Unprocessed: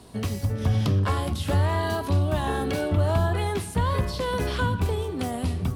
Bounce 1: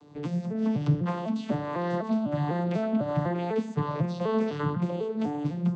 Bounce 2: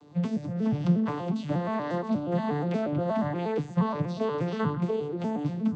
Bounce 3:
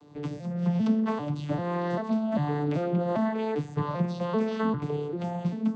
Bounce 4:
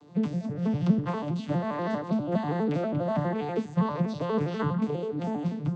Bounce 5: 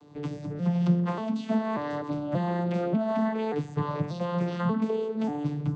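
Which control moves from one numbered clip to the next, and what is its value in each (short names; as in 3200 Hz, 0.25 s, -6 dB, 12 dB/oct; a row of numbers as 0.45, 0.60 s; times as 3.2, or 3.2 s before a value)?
arpeggiated vocoder, a note every: 250, 119, 394, 81, 586 ms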